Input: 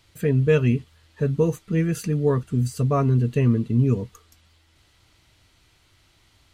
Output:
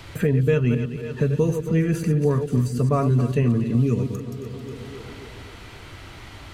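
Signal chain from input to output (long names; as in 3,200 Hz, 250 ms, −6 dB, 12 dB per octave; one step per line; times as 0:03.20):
delay that plays each chunk backwards 107 ms, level −8.5 dB
echo with a time of its own for lows and highs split 330 Hz, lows 177 ms, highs 268 ms, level −15 dB
multiband upward and downward compressor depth 70%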